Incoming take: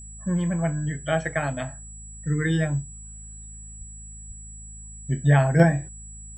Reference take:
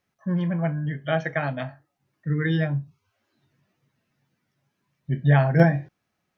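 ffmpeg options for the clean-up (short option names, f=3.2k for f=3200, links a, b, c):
-filter_complex "[0:a]bandreject=f=53.5:t=h:w=4,bandreject=f=107:t=h:w=4,bandreject=f=160.5:t=h:w=4,bandreject=f=214:t=h:w=4,bandreject=f=7.8k:w=30,asplit=3[a][b][c];[a]afade=t=out:st=3.78:d=0.02[d];[b]highpass=f=140:w=0.5412,highpass=f=140:w=1.3066,afade=t=in:st=3.78:d=0.02,afade=t=out:st=3.9:d=0.02[e];[c]afade=t=in:st=3.9:d=0.02[f];[d][e][f]amix=inputs=3:normalize=0,asplit=3[g][h][i];[g]afade=t=out:st=4.27:d=0.02[j];[h]highpass=f=140:w=0.5412,highpass=f=140:w=1.3066,afade=t=in:st=4.27:d=0.02,afade=t=out:st=4.39:d=0.02[k];[i]afade=t=in:st=4.39:d=0.02[l];[j][k][l]amix=inputs=3:normalize=0"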